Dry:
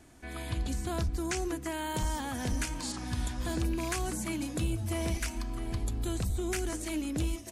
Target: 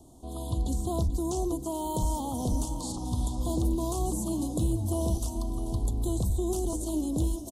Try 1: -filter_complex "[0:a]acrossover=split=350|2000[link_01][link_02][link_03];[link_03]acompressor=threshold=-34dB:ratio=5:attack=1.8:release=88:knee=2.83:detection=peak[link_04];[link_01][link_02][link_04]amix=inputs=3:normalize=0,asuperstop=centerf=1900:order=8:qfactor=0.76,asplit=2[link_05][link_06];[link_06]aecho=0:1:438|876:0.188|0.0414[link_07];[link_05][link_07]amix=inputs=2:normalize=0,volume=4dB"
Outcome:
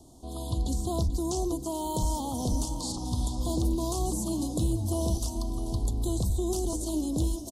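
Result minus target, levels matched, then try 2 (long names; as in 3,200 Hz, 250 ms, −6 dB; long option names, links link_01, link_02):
4,000 Hz band +4.5 dB
-filter_complex "[0:a]acrossover=split=350|2000[link_01][link_02][link_03];[link_03]acompressor=threshold=-34dB:ratio=5:attack=1.8:release=88:knee=2.83:detection=peak[link_04];[link_01][link_02][link_04]amix=inputs=3:normalize=0,asuperstop=centerf=1900:order=8:qfactor=0.76,equalizer=frequency=4900:width_type=o:width=0.79:gain=-7,asplit=2[link_05][link_06];[link_06]aecho=0:1:438|876:0.188|0.0414[link_07];[link_05][link_07]amix=inputs=2:normalize=0,volume=4dB"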